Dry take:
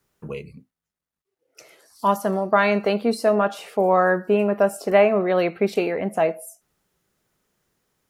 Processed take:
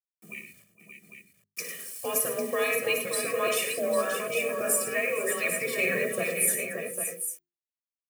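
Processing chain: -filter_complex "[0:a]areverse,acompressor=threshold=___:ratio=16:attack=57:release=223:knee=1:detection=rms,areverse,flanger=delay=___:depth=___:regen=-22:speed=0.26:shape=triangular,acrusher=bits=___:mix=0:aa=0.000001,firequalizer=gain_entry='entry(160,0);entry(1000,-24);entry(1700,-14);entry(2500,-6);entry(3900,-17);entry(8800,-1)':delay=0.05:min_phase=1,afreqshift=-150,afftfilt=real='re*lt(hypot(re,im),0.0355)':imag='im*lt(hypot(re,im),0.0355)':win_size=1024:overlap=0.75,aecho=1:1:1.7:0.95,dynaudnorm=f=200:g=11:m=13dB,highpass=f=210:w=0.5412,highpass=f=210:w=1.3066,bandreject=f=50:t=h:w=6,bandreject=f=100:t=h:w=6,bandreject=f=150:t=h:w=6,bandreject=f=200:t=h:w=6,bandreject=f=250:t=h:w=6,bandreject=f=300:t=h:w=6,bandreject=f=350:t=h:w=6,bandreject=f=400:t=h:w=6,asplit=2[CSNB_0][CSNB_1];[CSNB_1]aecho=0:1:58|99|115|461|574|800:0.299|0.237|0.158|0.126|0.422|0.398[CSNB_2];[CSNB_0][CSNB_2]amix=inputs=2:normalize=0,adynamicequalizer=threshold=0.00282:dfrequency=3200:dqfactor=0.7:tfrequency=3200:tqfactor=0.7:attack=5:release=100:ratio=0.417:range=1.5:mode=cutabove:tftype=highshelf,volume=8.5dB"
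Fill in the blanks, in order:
-28dB, 1.3, 6.2, 9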